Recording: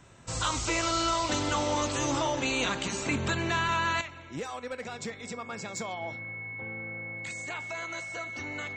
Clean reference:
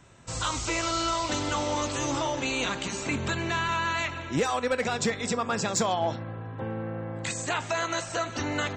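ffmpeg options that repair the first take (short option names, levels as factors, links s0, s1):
-af "bandreject=f=2200:w=30,asetnsamples=n=441:p=0,asendcmd='4.01 volume volume 10.5dB',volume=1"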